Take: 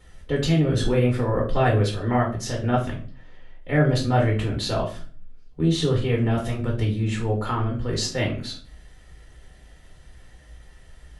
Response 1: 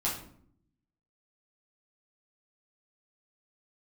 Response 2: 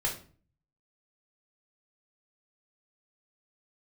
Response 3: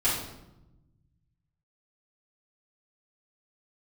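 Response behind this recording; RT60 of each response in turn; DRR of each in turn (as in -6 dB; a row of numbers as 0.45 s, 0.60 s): 2; 0.60 s, 0.40 s, 0.95 s; -6.5 dB, -1.5 dB, -10.5 dB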